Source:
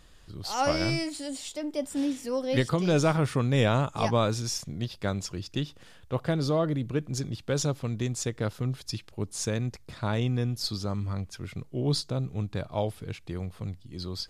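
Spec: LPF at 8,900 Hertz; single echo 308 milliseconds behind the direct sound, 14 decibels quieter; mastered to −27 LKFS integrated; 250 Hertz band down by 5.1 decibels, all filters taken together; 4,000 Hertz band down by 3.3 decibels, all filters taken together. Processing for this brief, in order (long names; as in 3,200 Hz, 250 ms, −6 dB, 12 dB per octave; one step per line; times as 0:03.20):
low-pass filter 8,900 Hz
parametric band 250 Hz −7.5 dB
parametric band 4,000 Hz −4 dB
single-tap delay 308 ms −14 dB
level +5 dB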